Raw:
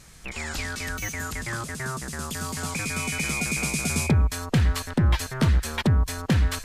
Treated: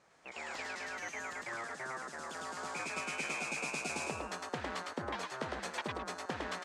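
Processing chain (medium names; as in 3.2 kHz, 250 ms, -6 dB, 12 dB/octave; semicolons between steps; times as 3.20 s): gate -27 dBFS, range -10 dB; Chebyshev band-pass 660–7600 Hz, order 2; tilt EQ -3.5 dB/octave; compression 10:1, threshold -40 dBFS, peak gain reduction 15 dB; frequency-shifting echo 106 ms, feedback 34%, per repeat +120 Hz, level -3 dB; tape noise reduction on one side only decoder only; trim +3.5 dB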